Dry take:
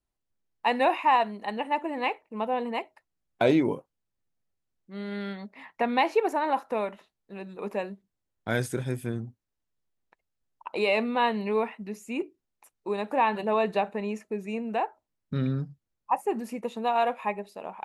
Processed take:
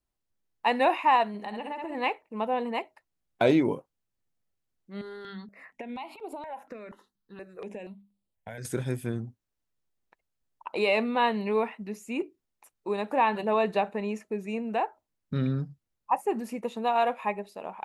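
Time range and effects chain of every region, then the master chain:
1.28–1.95 s: flutter echo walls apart 10.8 m, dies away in 0.46 s + compression 10:1, threshold -31 dBFS
5.01–8.65 s: hum notches 50/100/150/200/250/300 Hz + compression 10:1, threshold -32 dBFS + stepped phaser 4.2 Hz 650–6100 Hz
whole clip: none

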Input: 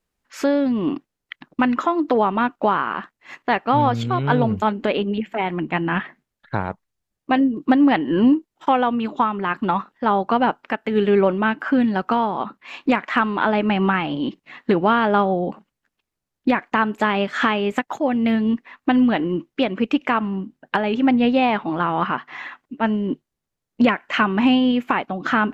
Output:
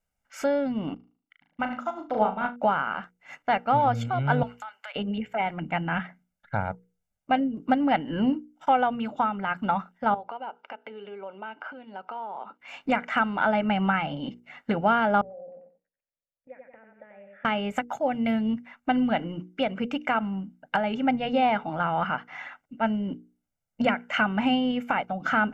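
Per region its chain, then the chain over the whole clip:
0.94–2.56 s: flutter echo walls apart 6.4 m, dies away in 0.5 s + upward expansion 2.5:1, over -25 dBFS
4.43–4.96 s: high-pass 1 kHz 24 dB/octave + compression 12:1, threshold -29 dBFS
10.14–12.60 s: compression 8:1, threshold -30 dBFS + cabinet simulation 340–4600 Hz, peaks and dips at 410 Hz +8 dB, 970 Hz +7 dB, 1.8 kHz -5 dB, 2.8 kHz +4 dB
15.21–17.45 s: feedback delay 90 ms, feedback 27%, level -7 dB + compression 3:1, threshold -30 dBFS + cascade formant filter e
whole clip: peaking EQ 4 kHz -8.5 dB 0.47 oct; hum notches 60/120/180/240/300/360/420/480 Hz; comb 1.4 ms, depth 68%; trim -6 dB

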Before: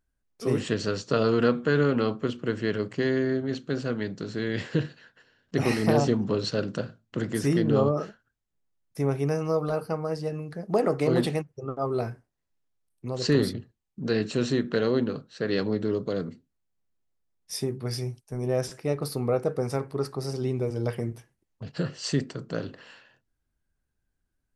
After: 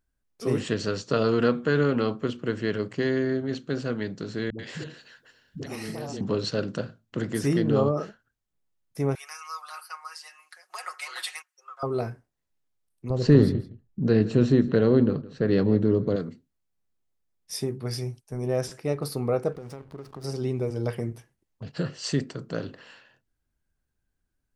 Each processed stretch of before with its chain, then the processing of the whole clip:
4.50–6.21 s: treble shelf 4.6 kHz +10 dB + compression 4:1, threshold -33 dBFS + phase dispersion highs, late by 91 ms, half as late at 310 Hz
9.15–11.83 s: high-pass 1.2 kHz 24 dB/octave + peaking EQ 8.7 kHz +4.5 dB 0.97 oct + comb 5.5 ms, depth 80%
13.10–16.16 s: tilt EQ -3 dB/octave + delay 164 ms -18 dB
19.52–20.24 s: compression 8:1, threshold -35 dBFS + hysteresis with a dead band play -41.5 dBFS
whole clip: none

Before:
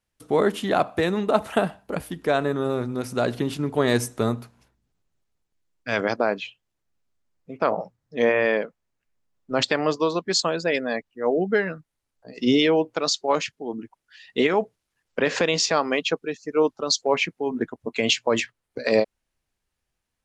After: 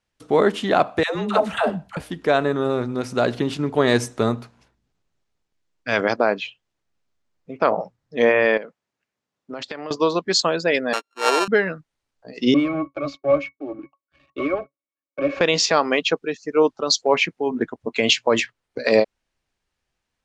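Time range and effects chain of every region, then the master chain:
1.03–1.97 s: peaking EQ 340 Hz -5.5 dB 1.2 oct + phase dispersion lows, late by 129 ms, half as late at 480 Hz
8.57–9.91 s: high-pass 130 Hz + compression, threshold -32 dBFS
10.93–11.48 s: sorted samples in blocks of 32 samples + high-pass 320 Hz 24 dB/octave
12.54–15.41 s: high-pass 280 Hz 24 dB/octave + waveshaping leveller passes 3 + pitch-class resonator C#, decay 0.1 s
whole clip: low-pass 6.9 kHz 12 dB/octave; bass shelf 200 Hz -4 dB; trim +4 dB

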